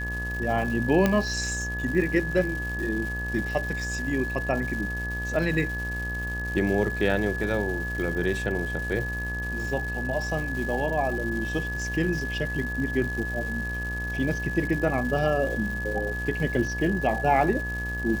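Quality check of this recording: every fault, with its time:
mains buzz 60 Hz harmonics 21 −33 dBFS
surface crackle 390 per second −34 dBFS
whistle 1,700 Hz −31 dBFS
0:01.06: click −9 dBFS

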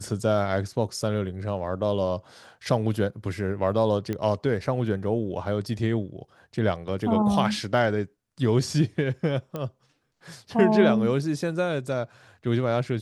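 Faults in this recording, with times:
0:04.13: click −17 dBFS
0:09.56: click −19 dBFS

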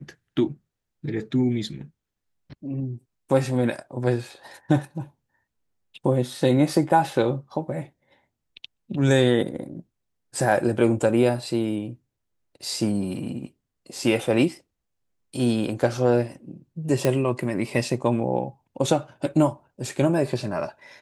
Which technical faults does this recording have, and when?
0:17.05: click −8 dBFS

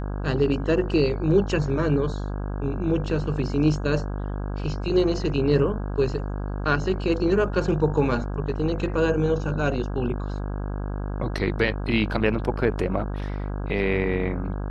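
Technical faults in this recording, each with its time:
mains buzz 50 Hz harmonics 33 −29 dBFS

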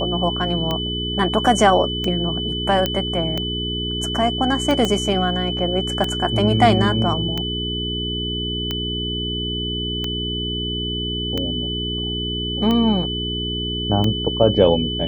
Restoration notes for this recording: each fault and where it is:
mains hum 60 Hz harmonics 7 −27 dBFS
scratch tick 45 rpm −10 dBFS
whistle 3,000 Hz −25 dBFS
0:02.86: click −6 dBFS
0:04.85: click −7 dBFS

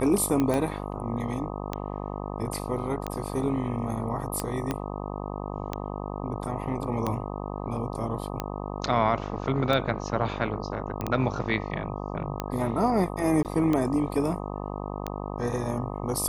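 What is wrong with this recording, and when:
mains buzz 50 Hz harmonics 25 −34 dBFS
scratch tick 45 rpm −14 dBFS
0:00.54: click −15 dBFS
0:04.71: click −14 dBFS
0:11.01: click −17 dBFS
0:13.43–0:13.45: drop-out 18 ms

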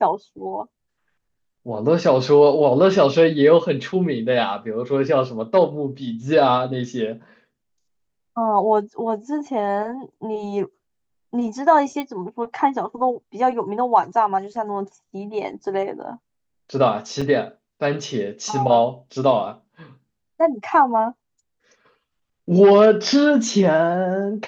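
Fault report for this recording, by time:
0:12.00: click −14 dBFS
0:17.21–0:17.22: drop-out 5.1 ms

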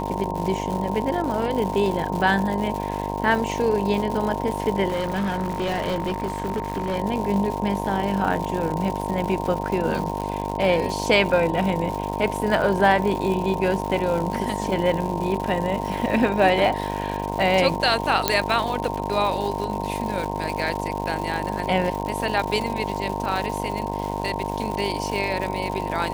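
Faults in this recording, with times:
mains buzz 50 Hz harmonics 21 −29 dBFS
surface crackle 230 per second −28 dBFS
whistle 920 Hz −30 dBFS
0:04.88–0:06.97: clipping −20.5 dBFS
0:18.28: click −1 dBFS

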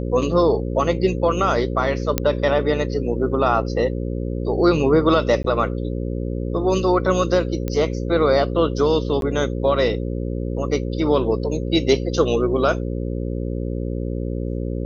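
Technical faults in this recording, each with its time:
mains buzz 60 Hz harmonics 9 −25 dBFS
0:02.18: click −3 dBFS
0:05.43–0:05.44: drop-out 13 ms
0:07.68: click −12 dBFS
0:09.21–0:09.22: drop-out 12 ms

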